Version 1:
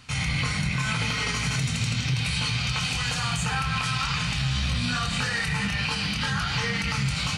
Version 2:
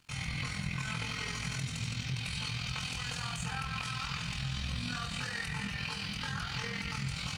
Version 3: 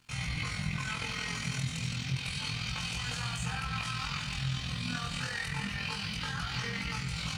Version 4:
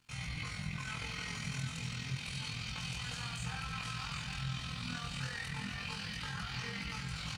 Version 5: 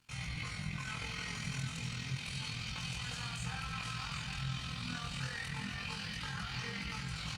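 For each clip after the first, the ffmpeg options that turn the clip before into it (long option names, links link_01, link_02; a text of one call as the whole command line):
ffmpeg -i in.wav -af "tremolo=f=42:d=0.519,aeval=exprs='sgn(val(0))*max(abs(val(0))-0.00178,0)':channel_layout=same,bandreject=frequency=74.89:width_type=h:width=4,bandreject=frequency=149.78:width_type=h:width=4,bandreject=frequency=224.67:width_type=h:width=4,bandreject=frequency=299.56:width_type=h:width=4,bandreject=frequency=374.45:width_type=h:width=4,bandreject=frequency=449.34:width_type=h:width=4,bandreject=frequency=524.23:width_type=h:width=4,bandreject=frequency=599.12:width_type=h:width=4,bandreject=frequency=674.01:width_type=h:width=4,bandreject=frequency=748.9:width_type=h:width=4,bandreject=frequency=823.79:width_type=h:width=4,bandreject=frequency=898.68:width_type=h:width=4,bandreject=frequency=973.57:width_type=h:width=4,bandreject=frequency=1048.46:width_type=h:width=4,bandreject=frequency=1123.35:width_type=h:width=4,bandreject=frequency=1198.24:width_type=h:width=4,bandreject=frequency=1273.13:width_type=h:width=4,bandreject=frequency=1348.02:width_type=h:width=4,bandreject=frequency=1422.91:width_type=h:width=4,bandreject=frequency=1497.8:width_type=h:width=4,bandreject=frequency=1572.69:width_type=h:width=4,bandreject=frequency=1647.58:width_type=h:width=4,bandreject=frequency=1722.47:width_type=h:width=4,bandreject=frequency=1797.36:width_type=h:width=4,bandreject=frequency=1872.25:width_type=h:width=4,bandreject=frequency=1947.14:width_type=h:width=4,bandreject=frequency=2022.03:width_type=h:width=4,volume=-7.5dB" out.wav
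ffmpeg -i in.wav -af "flanger=delay=16.5:depth=7.2:speed=0.3,volume=4.5dB" out.wav
ffmpeg -i in.wav -af "aecho=1:1:761:0.422,volume=-6dB" out.wav
ffmpeg -i in.wav -ar 48000 -c:a libopus -b:a 64k out.opus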